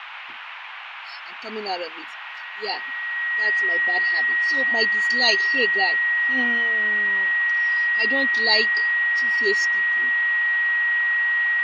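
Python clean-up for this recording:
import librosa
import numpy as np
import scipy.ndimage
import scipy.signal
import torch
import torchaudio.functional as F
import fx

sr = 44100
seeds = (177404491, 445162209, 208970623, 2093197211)

y = fx.notch(x, sr, hz=1900.0, q=30.0)
y = fx.noise_reduce(y, sr, print_start_s=0.23, print_end_s=0.73, reduce_db=30.0)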